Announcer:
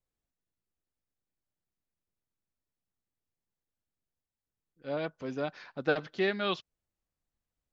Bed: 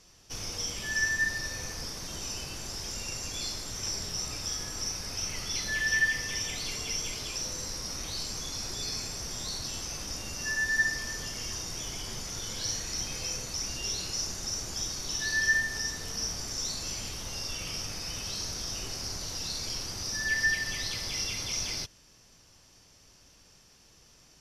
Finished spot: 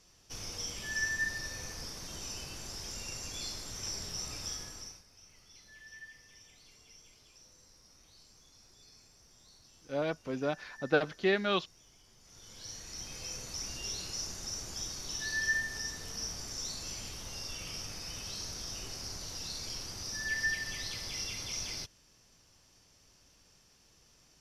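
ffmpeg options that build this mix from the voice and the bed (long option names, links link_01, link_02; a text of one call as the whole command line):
ffmpeg -i stem1.wav -i stem2.wav -filter_complex "[0:a]adelay=5050,volume=1dB[link_01];[1:a]volume=14dB,afade=type=out:start_time=4.48:duration=0.56:silence=0.105925,afade=type=in:start_time=12.19:duration=1.38:silence=0.112202[link_02];[link_01][link_02]amix=inputs=2:normalize=0" out.wav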